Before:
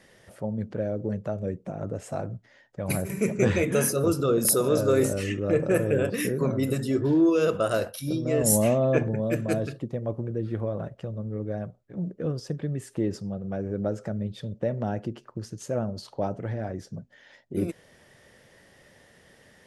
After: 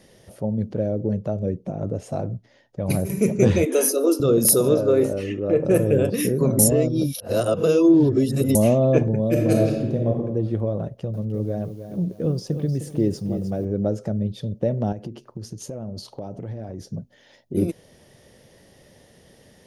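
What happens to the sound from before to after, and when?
0.86–3.02 s: treble shelf 10 kHz -11 dB
3.65–4.20 s: steep high-pass 250 Hz 96 dB/octave
4.74–5.65 s: tone controls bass -8 dB, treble -15 dB
6.59–8.55 s: reverse
9.30–10.15 s: reverb throw, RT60 1.1 s, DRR -0.5 dB
10.83–13.65 s: bit-crushed delay 307 ms, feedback 35%, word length 9-bit, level -10 dB
14.92–16.81 s: compression, threshold -34 dBFS
whole clip: peaking EQ 1.6 kHz -11 dB 1.6 oct; band-stop 7.7 kHz, Q 5.6; trim +6.5 dB

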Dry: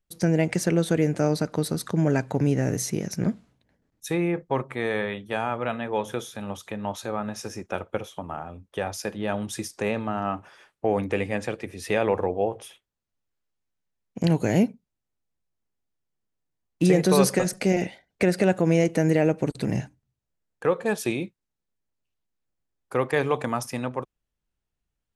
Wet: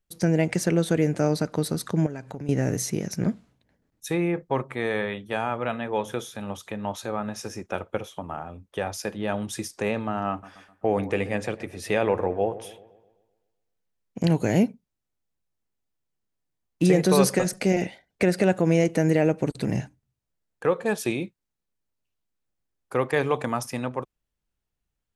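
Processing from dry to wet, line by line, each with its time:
2.06–2.49 s: compression 3:1, threshold -35 dBFS
10.30–14.19 s: feedback echo behind a low-pass 128 ms, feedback 50%, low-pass 1.6 kHz, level -15.5 dB

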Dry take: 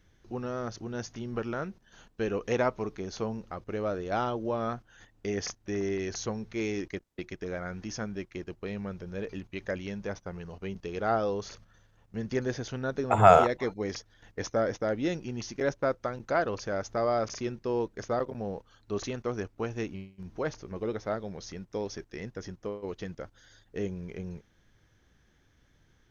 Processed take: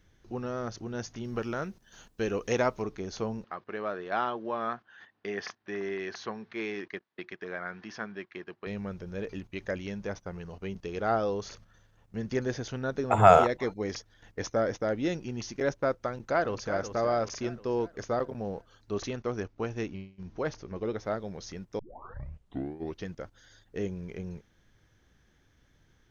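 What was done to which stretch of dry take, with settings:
1.24–2.82 s: treble shelf 5.4 kHz +10.5 dB
3.44–8.67 s: cabinet simulation 250–4400 Hz, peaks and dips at 290 Hz -6 dB, 520 Hz -6 dB, 1.1 kHz +4 dB, 1.7 kHz +6 dB
16.07–16.71 s: echo throw 370 ms, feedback 50%, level -9 dB
18.98–20.98 s: steep low-pass 6.6 kHz
21.79 s: tape start 1.26 s

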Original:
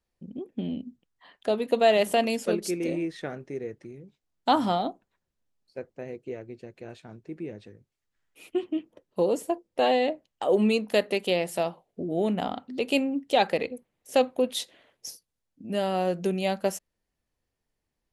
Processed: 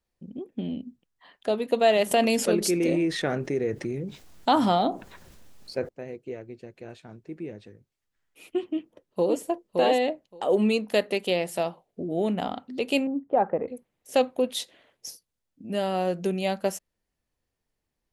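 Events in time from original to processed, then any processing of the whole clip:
2.11–5.89 s: level flattener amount 50%
8.69–9.41 s: echo throw 570 ms, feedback 10%, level -3.5 dB
13.07–13.68 s: low-pass 1.3 kHz 24 dB/octave

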